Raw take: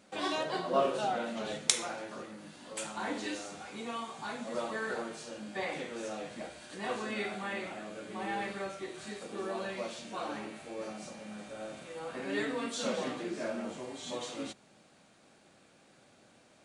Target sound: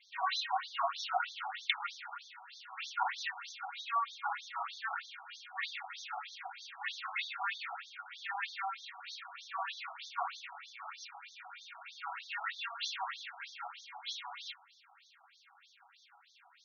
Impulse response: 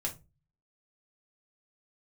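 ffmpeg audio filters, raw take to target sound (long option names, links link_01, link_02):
-filter_complex "[0:a]asplit=2[link_01][link_02];[link_02]asoftclip=type=tanh:threshold=-22dB,volume=-4dB[link_03];[link_01][link_03]amix=inputs=2:normalize=0[link_04];[1:a]atrim=start_sample=2205,asetrate=70560,aresample=44100[link_05];[link_04][link_05]afir=irnorm=-1:irlink=0,afftfilt=real='re*between(b*sr/1024,940*pow(4800/940,0.5+0.5*sin(2*PI*3.2*pts/sr))/1.41,940*pow(4800/940,0.5+0.5*sin(2*PI*3.2*pts/sr))*1.41)':imag='im*between(b*sr/1024,940*pow(4800/940,0.5+0.5*sin(2*PI*3.2*pts/sr))/1.41,940*pow(4800/940,0.5+0.5*sin(2*PI*3.2*pts/sr))*1.41)':win_size=1024:overlap=0.75,volume=5dB"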